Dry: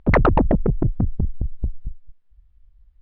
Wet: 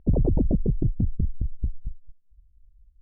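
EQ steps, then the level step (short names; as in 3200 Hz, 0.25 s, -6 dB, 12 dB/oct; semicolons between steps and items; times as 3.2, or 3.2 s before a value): Gaussian blur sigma 18 samples; air absorption 420 m; -2.5 dB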